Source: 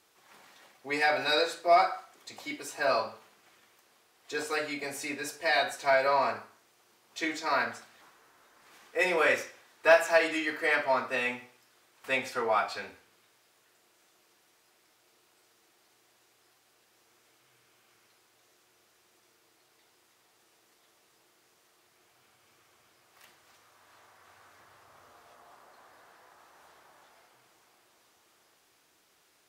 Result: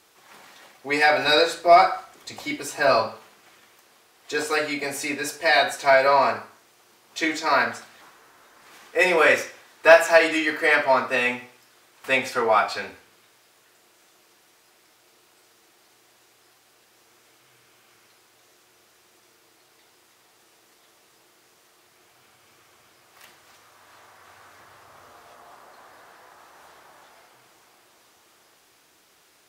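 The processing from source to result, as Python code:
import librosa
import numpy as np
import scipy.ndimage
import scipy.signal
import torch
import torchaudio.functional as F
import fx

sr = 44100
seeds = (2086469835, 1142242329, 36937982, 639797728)

y = fx.low_shelf(x, sr, hz=120.0, db=11.0, at=(1.25, 3.07))
y = y * librosa.db_to_amplitude(8.0)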